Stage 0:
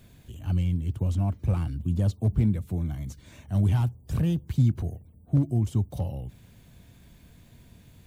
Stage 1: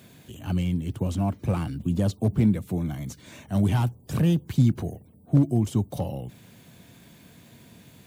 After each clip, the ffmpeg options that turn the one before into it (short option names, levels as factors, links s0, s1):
-af "highpass=160,volume=2.11"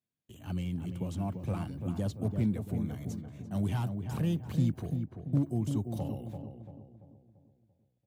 -filter_complex "[0:a]agate=range=0.02:threshold=0.00708:ratio=16:detection=peak,asplit=2[s0][s1];[s1]adelay=340,lowpass=f=1400:p=1,volume=0.501,asplit=2[s2][s3];[s3]adelay=340,lowpass=f=1400:p=1,volume=0.46,asplit=2[s4][s5];[s5]adelay=340,lowpass=f=1400:p=1,volume=0.46,asplit=2[s6][s7];[s7]adelay=340,lowpass=f=1400:p=1,volume=0.46,asplit=2[s8][s9];[s9]adelay=340,lowpass=f=1400:p=1,volume=0.46,asplit=2[s10][s11];[s11]adelay=340,lowpass=f=1400:p=1,volume=0.46[s12];[s2][s4][s6][s8][s10][s12]amix=inputs=6:normalize=0[s13];[s0][s13]amix=inputs=2:normalize=0,volume=0.355"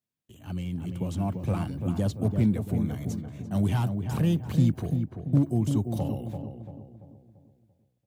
-af "dynaudnorm=f=350:g=5:m=2"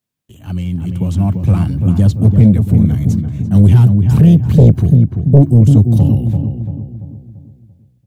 -af "asubboost=boost=5.5:cutoff=240,aeval=exprs='0.944*sin(PI/2*2*val(0)/0.944)':c=same,volume=0.891"